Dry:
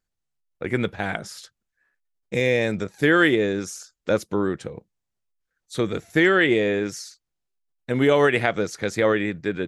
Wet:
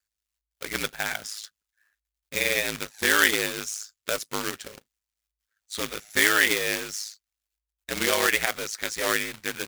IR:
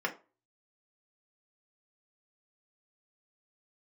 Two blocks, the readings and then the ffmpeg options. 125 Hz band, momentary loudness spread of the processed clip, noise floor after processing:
-15.0 dB, 17 LU, under -85 dBFS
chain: -af "acrusher=bits=2:mode=log:mix=0:aa=0.000001,aeval=exprs='val(0)*sin(2*PI*53*n/s)':c=same,tiltshelf=f=800:g=-9,volume=0.708"

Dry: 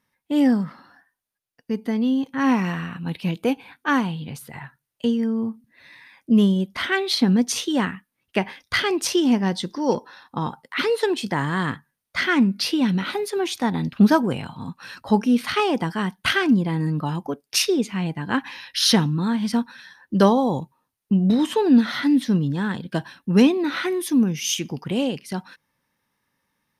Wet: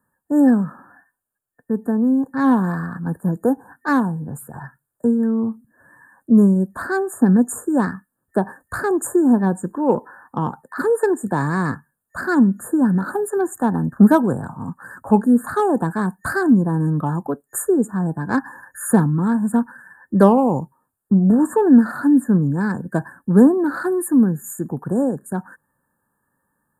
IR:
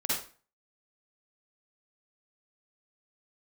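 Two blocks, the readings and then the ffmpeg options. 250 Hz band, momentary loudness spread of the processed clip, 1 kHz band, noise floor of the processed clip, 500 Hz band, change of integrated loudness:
+4.0 dB, 14 LU, +3.0 dB, -76 dBFS, +4.0 dB, +3.0 dB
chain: -filter_complex "[0:a]afftfilt=real='re*(1-between(b*sr/4096,1800,6800))':imag='im*(1-between(b*sr/4096,1800,6800))':win_size=4096:overlap=0.75,acrossover=split=200|1200|2200[s0][s1][s2][s3];[s2]asoftclip=type=tanh:threshold=0.0188[s4];[s0][s1][s4][s3]amix=inputs=4:normalize=0,volume=1.58"

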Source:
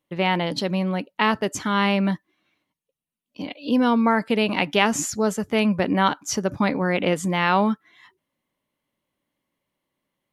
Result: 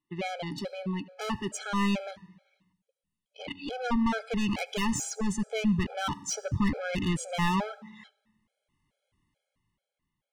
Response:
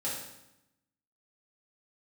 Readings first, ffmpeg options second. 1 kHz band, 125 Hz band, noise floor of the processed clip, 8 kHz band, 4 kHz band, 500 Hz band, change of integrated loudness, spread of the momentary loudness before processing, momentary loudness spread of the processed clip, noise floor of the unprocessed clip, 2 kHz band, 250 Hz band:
-10.5 dB, -5.0 dB, under -85 dBFS, -5.5 dB, -9.0 dB, -12.0 dB, -8.5 dB, 6 LU, 11 LU, under -85 dBFS, -10.5 dB, -7.5 dB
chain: -filter_complex "[0:a]aresample=22050,aresample=44100,dynaudnorm=f=190:g=13:m=5.31,asoftclip=type=tanh:threshold=0.158,asplit=2[s0][s1];[1:a]atrim=start_sample=2205,adelay=70[s2];[s1][s2]afir=irnorm=-1:irlink=0,volume=0.0631[s3];[s0][s3]amix=inputs=2:normalize=0,asubboost=boost=6:cutoff=120,afftfilt=real='re*gt(sin(2*PI*2.3*pts/sr)*(1-2*mod(floor(b*sr/1024/430),2)),0)':imag='im*gt(sin(2*PI*2.3*pts/sr)*(1-2*mod(floor(b*sr/1024/430),2)),0)':win_size=1024:overlap=0.75,volume=0.531"

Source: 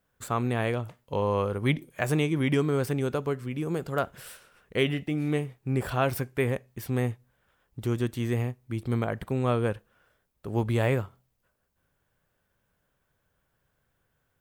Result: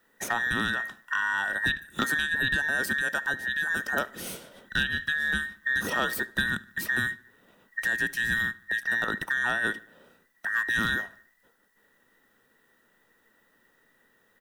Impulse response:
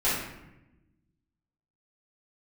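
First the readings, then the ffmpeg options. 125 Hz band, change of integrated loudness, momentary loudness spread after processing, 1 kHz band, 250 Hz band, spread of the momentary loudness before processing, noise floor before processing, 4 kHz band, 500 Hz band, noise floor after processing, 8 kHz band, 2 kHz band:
-14.5 dB, +1.5 dB, 7 LU, 0.0 dB, -9.0 dB, 9 LU, -76 dBFS, +6.5 dB, -11.5 dB, -67 dBFS, +5.5 dB, +13.5 dB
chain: -filter_complex "[0:a]afftfilt=real='real(if(between(b,1,1012),(2*floor((b-1)/92)+1)*92-b,b),0)':imag='imag(if(between(b,1,1012),(2*floor((b-1)/92)+1)*92-b,b),0)*if(between(b,1,1012),-1,1)':win_size=2048:overlap=0.75,equalizer=f=210:w=1.4:g=8,acrossover=split=420|3000[s0][s1][s2];[s0]acompressor=threshold=0.01:ratio=4[s3];[s1]acompressor=threshold=0.0141:ratio=4[s4];[s2]acompressor=threshold=0.00891:ratio=4[s5];[s3][s4][s5]amix=inputs=3:normalize=0,aeval=exprs='clip(val(0),-1,0.0531)':c=same,asplit=2[s6][s7];[s7]adelay=74,lowpass=f=3900:p=1,volume=0.0841,asplit=2[s8][s9];[s9]adelay=74,lowpass=f=3900:p=1,volume=0.53,asplit=2[s10][s11];[s11]adelay=74,lowpass=f=3900:p=1,volume=0.53,asplit=2[s12][s13];[s13]adelay=74,lowpass=f=3900:p=1,volume=0.53[s14];[s8][s10][s12][s14]amix=inputs=4:normalize=0[s15];[s6][s15]amix=inputs=2:normalize=0,volume=2.51"

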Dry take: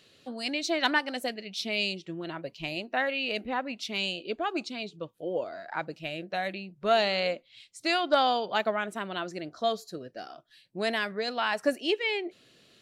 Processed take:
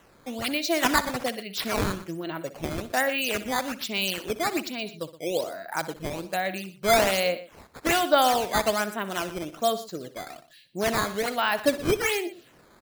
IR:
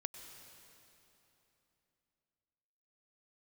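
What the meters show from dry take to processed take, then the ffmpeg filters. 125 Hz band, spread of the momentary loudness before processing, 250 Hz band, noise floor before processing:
+8.0 dB, 13 LU, +4.0 dB, -62 dBFS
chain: -af "acrusher=samples=9:mix=1:aa=0.000001:lfo=1:lforange=14.4:lforate=1.2,aecho=1:1:62|120:0.168|0.15,volume=1.5"

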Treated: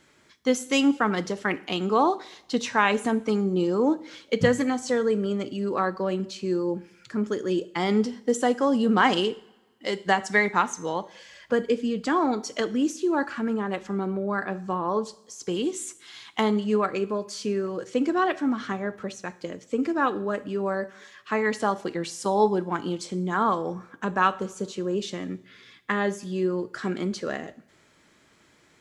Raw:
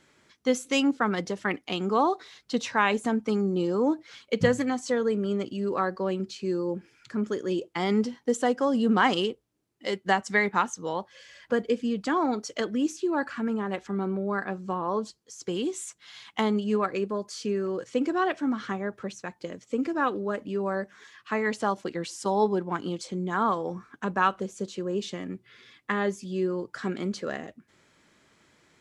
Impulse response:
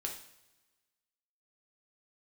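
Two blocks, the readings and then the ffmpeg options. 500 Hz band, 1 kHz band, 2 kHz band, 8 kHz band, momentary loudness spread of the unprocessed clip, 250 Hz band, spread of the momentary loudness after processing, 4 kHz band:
+2.0 dB, +2.0 dB, +2.0 dB, +3.0 dB, 11 LU, +2.0 dB, 11 LU, +2.5 dB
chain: -filter_complex "[0:a]asplit=2[s0][s1];[1:a]atrim=start_sample=2205,highshelf=f=9900:g=11[s2];[s1][s2]afir=irnorm=-1:irlink=0,volume=0.355[s3];[s0][s3]amix=inputs=2:normalize=0"

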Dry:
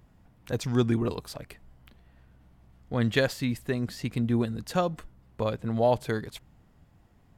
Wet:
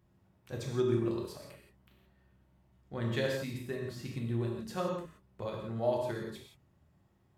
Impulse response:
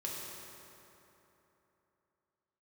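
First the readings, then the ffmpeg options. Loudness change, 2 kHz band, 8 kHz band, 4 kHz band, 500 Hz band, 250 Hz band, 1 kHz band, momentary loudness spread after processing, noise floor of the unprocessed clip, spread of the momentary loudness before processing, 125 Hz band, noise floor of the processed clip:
-7.0 dB, -8.5 dB, -8.0 dB, -8.0 dB, -5.0 dB, -8.0 dB, -8.5 dB, 14 LU, -61 dBFS, 17 LU, -7.0 dB, -69 dBFS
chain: -filter_complex "[0:a]highpass=60[s0];[1:a]atrim=start_sample=2205,afade=t=out:st=0.23:d=0.01,atrim=end_sample=10584[s1];[s0][s1]afir=irnorm=-1:irlink=0,volume=0.398"

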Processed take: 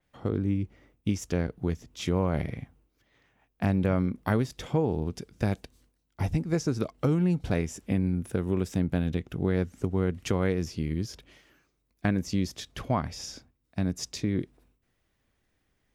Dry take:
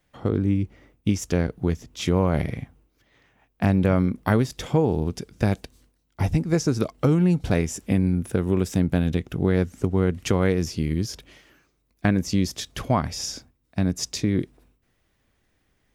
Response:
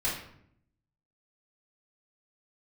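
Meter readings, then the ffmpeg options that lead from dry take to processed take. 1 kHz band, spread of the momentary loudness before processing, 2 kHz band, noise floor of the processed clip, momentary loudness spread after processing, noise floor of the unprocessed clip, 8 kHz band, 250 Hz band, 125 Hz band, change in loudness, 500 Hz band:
-5.5 dB, 9 LU, -5.5 dB, -75 dBFS, 10 LU, -70 dBFS, -8.0 dB, -5.5 dB, -5.5 dB, -5.5 dB, -5.5 dB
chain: -af "adynamicequalizer=threshold=0.00501:dfrequency=4700:dqfactor=0.7:tfrequency=4700:tqfactor=0.7:attack=5:release=100:ratio=0.375:range=3:mode=cutabove:tftype=highshelf,volume=0.531"

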